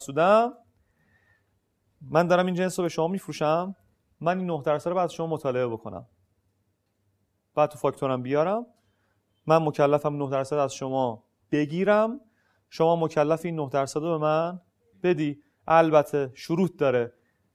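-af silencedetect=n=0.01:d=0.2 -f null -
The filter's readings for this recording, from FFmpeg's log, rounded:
silence_start: 0.52
silence_end: 2.02 | silence_duration: 1.50
silence_start: 3.72
silence_end: 4.21 | silence_duration: 0.49
silence_start: 6.02
silence_end: 7.57 | silence_duration: 1.55
silence_start: 8.64
silence_end: 9.47 | silence_duration: 0.84
silence_start: 11.15
silence_end: 11.52 | silence_duration: 0.37
silence_start: 12.18
silence_end: 12.73 | silence_duration: 0.55
silence_start: 14.57
silence_end: 15.04 | silence_duration: 0.46
silence_start: 15.33
silence_end: 15.68 | silence_duration: 0.34
silence_start: 17.08
silence_end: 17.54 | silence_duration: 0.47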